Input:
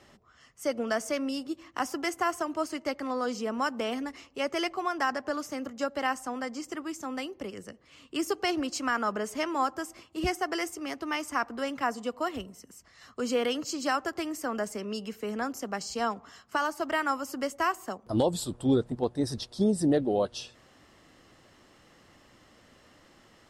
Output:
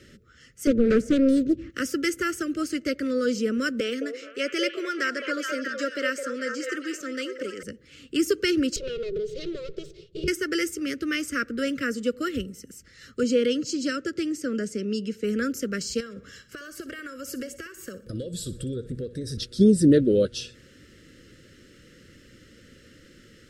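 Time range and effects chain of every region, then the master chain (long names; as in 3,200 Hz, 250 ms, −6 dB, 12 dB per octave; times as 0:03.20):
0:00.67–0:01.70: high-pass filter 46 Hz 24 dB per octave + spectral tilt −4 dB per octave + highs frequency-modulated by the lows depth 0.78 ms
0:03.80–0:07.63: high-pass filter 340 Hz + parametric band 11,000 Hz −13 dB 0.23 octaves + echo through a band-pass that steps 212 ms, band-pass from 690 Hz, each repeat 0.7 octaves, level 0 dB
0:08.76–0:10.28: lower of the sound and its delayed copy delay 2.8 ms + drawn EQ curve 110 Hz 0 dB, 160 Hz +14 dB, 280 Hz −26 dB, 390 Hz +11 dB, 950 Hz −4 dB, 1,600 Hz −19 dB, 2,700 Hz −7 dB, 3,900 Hz 0 dB, 13,000 Hz −29 dB + downward compressor 5 to 1, threshold −33 dBFS
0:13.23–0:15.24: band-pass filter 100–7,400 Hz + parametric band 1,500 Hz −5.5 dB 2.4 octaves
0:16.00–0:19.37: comb filter 1.8 ms, depth 37% + downward compressor 10 to 1, threshold −36 dBFS + repeating echo 61 ms, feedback 40%, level −15 dB
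whole clip: Chebyshev band-stop filter 520–1,400 Hz, order 3; low-shelf EQ 460 Hz +4.5 dB; level +5.5 dB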